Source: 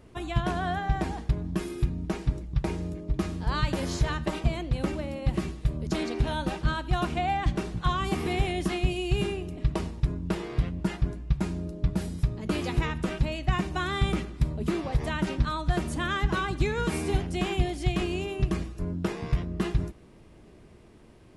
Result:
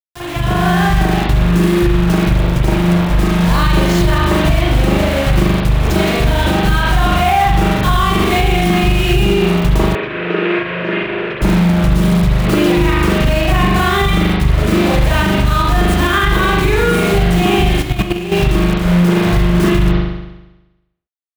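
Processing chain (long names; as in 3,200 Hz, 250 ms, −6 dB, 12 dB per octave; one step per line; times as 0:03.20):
bit-depth reduction 6 bits, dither none
high-shelf EQ 2,100 Hz +3 dB
convolution reverb RT60 1.0 s, pre-delay 40 ms, DRR −9.5 dB
brickwall limiter −12 dBFS, peak gain reduction 8.5 dB
automatic gain control gain up to 9 dB
0:09.95–0:11.42: loudspeaker in its box 360–3,100 Hz, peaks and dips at 420 Hz +9 dB, 820 Hz −9 dB, 1,700 Hz +4 dB, 2,500 Hz +6 dB
0:17.82–0:18.32: output level in coarse steps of 11 dB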